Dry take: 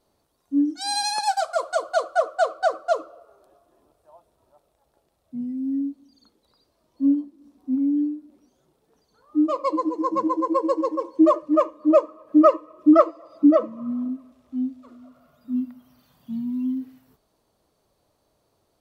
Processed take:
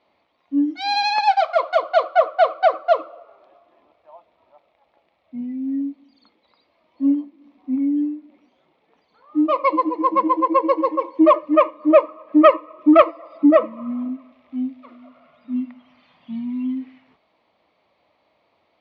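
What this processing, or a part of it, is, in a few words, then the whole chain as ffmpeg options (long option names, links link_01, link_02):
overdrive pedal into a guitar cabinet: -filter_complex "[0:a]asplit=2[link_01][link_02];[link_02]highpass=frequency=720:poles=1,volume=10dB,asoftclip=type=tanh:threshold=-2.5dB[link_03];[link_01][link_03]amix=inputs=2:normalize=0,lowpass=frequency=7000:poles=1,volume=-6dB,highpass=91,equalizer=frequency=130:width_type=q:width=4:gain=-8,equalizer=frequency=410:width_type=q:width=4:gain=-7,equalizer=frequency=1500:width_type=q:width=4:gain=-7,equalizer=frequency=2200:width_type=q:width=4:gain=9,lowpass=frequency=3500:width=0.5412,lowpass=frequency=3500:width=1.3066,volume=3.5dB"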